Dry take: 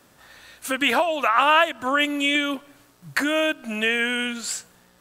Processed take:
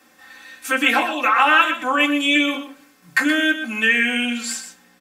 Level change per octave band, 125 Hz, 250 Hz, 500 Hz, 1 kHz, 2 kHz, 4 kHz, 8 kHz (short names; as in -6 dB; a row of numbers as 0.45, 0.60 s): n/a, +5.0 dB, -2.5 dB, +2.5 dB, +5.5 dB, +2.5 dB, +2.0 dB